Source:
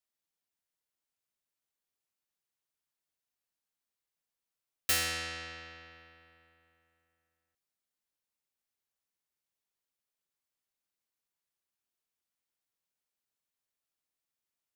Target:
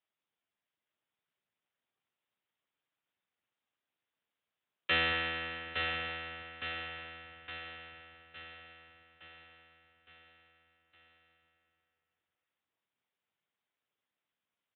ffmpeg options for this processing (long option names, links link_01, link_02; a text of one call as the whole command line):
ffmpeg -i in.wav -af "aecho=1:1:863|1726|2589|3452|4315|5178|6041:0.562|0.309|0.17|0.0936|0.0515|0.0283|0.0156,acontrast=28" -ar 8000 -c:a libspeex -b:a 11k out.spx